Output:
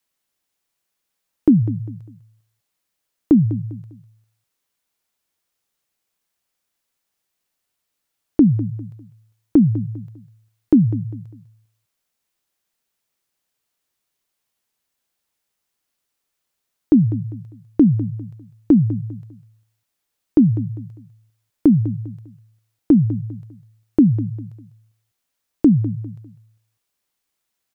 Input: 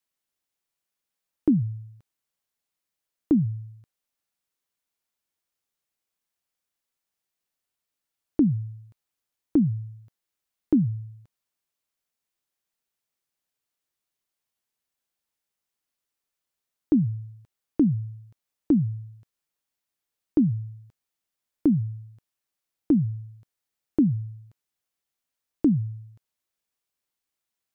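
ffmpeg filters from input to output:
ffmpeg -i in.wav -af "aecho=1:1:200|400|600:0.188|0.0603|0.0193,volume=7.5dB" out.wav

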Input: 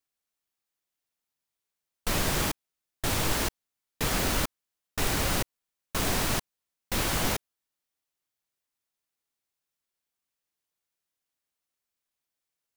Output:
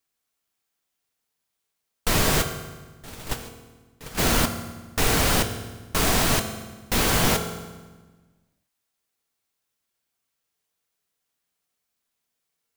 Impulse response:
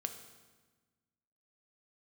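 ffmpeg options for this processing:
-filter_complex "[0:a]asplit=3[link_01][link_02][link_03];[link_01]afade=type=out:start_time=2.41:duration=0.02[link_04];[link_02]agate=range=-21dB:threshold=-23dB:ratio=16:detection=peak,afade=type=in:start_time=2.41:duration=0.02,afade=type=out:start_time=4.17:duration=0.02[link_05];[link_03]afade=type=in:start_time=4.17:duration=0.02[link_06];[link_04][link_05][link_06]amix=inputs=3:normalize=0[link_07];[1:a]atrim=start_sample=2205[link_08];[link_07][link_08]afir=irnorm=-1:irlink=0,volume=7.5dB"

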